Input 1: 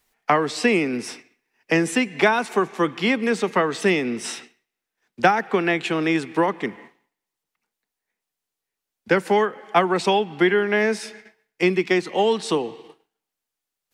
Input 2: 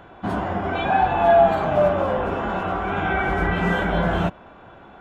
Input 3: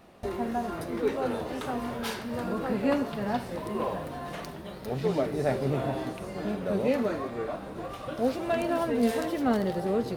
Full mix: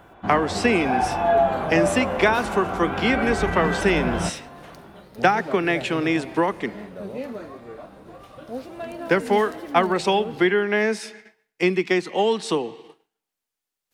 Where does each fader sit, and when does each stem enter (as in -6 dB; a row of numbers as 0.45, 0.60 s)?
-1.0, -4.0, -6.0 dB; 0.00, 0.00, 0.30 s